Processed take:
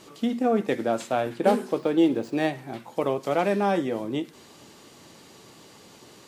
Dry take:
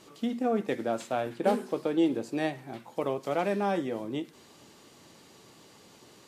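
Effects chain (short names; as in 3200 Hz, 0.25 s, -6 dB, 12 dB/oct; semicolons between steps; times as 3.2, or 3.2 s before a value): 1.78–2.48 median filter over 5 samples; gain +5 dB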